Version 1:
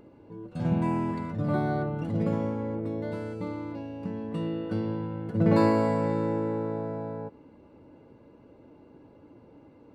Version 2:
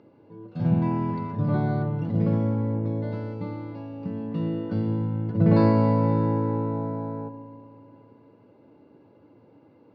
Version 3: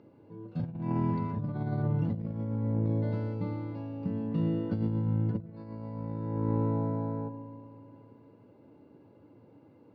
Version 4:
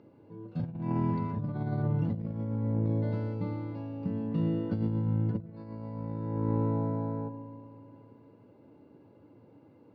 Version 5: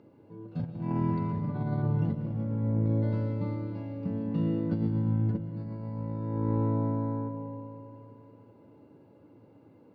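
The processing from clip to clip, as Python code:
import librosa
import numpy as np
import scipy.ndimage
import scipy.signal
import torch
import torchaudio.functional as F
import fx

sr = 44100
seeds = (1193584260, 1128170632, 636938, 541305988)

y1 = scipy.signal.sosfilt(scipy.signal.ellip(3, 1.0, 40, [100.0, 5100.0], 'bandpass', fs=sr, output='sos'), x)
y1 = fx.dynamic_eq(y1, sr, hz=130.0, q=0.86, threshold_db=-42.0, ratio=4.0, max_db=8)
y1 = fx.rev_spring(y1, sr, rt60_s=2.8, pass_ms=(36,), chirp_ms=50, drr_db=12.0)
y1 = F.gain(torch.from_numpy(y1), -1.5).numpy()
y2 = fx.low_shelf(y1, sr, hz=230.0, db=5.5)
y2 = fx.over_compress(y2, sr, threshold_db=-23.0, ratio=-0.5)
y2 = F.gain(torch.from_numpy(y2), -7.0).numpy()
y3 = y2
y4 = fx.rev_freeverb(y3, sr, rt60_s=2.0, hf_ratio=0.6, predelay_ms=100, drr_db=7.5)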